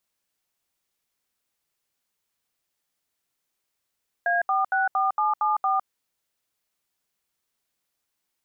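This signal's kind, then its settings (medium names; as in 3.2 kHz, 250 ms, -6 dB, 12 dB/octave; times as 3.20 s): DTMF "A464774", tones 157 ms, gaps 73 ms, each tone -22.5 dBFS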